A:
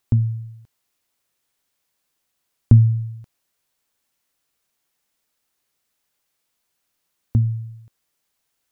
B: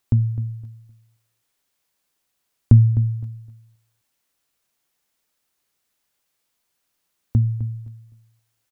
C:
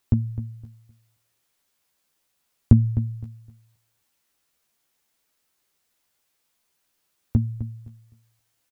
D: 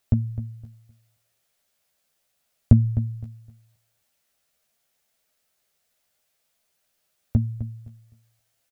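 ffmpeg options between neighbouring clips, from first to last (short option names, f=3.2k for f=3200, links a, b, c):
-af "aecho=1:1:257|514|771:0.224|0.0493|0.0108"
-filter_complex "[0:a]asplit=2[a][b];[b]adelay=13,volume=-5dB[c];[a][c]amix=inputs=2:normalize=0"
-af "equalizer=f=315:t=o:w=0.33:g=-8,equalizer=f=630:t=o:w=0.33:g=7,equalizer=f=1k:t=o:w=0.33:g=-5"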